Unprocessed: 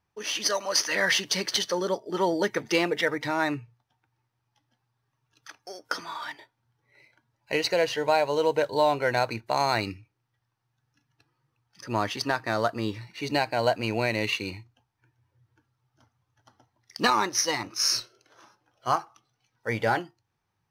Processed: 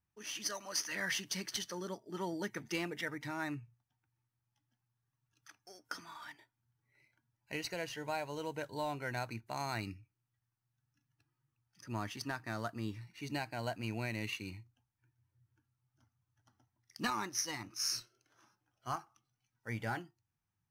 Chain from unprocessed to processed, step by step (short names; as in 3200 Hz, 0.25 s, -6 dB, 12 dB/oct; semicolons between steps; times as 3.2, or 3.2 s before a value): graphic EQ 500/1000/2000/4000 Hz -12/-5/-3/-8 dB; gain -6.5 dB